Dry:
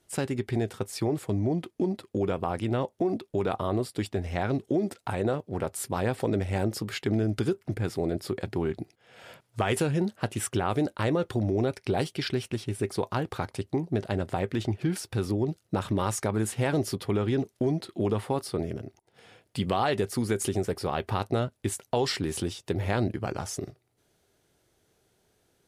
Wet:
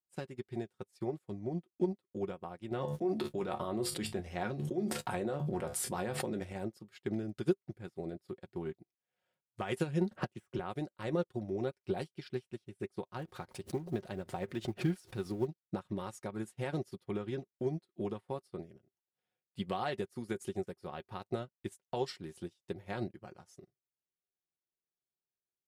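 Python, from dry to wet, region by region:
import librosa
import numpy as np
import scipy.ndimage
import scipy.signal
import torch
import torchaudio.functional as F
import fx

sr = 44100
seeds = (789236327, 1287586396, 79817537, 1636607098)

y = fx.chain(x, sr, fx.hum_notches(base_hz=50, count=3),
    fx.comb_fb(f0_hz=72.0, decay_s=0.16, harmonics='all', damping=0.0, mix_pct=70),
    fx.env_flatten(amount_pct=100), at=(2.71, 6.53))
y = fx.chain(y, sr, fx.self_delay(depth_ms=0.06),
    fx.high_shelf(hz=4000.0, db=-11.0),
    fx.band_squash(depth_pct=100), at=(10.11, 10.59))
y = fx.chain(y, sr, fx.law_mismatch(coded='mu'),
    fx.pre_swell(db_per_s=90.0), at=(13.19, 15.47))
y = y + 0.44 * np.pad(y, (int(5.5 * sr / 1000.0), 0))[:len(y)]
y = fx.upward_expand(y, sr, threshold_db=-42.0, expansion=2.5)
y = y * librosa.db_to_amplitude(-3.5)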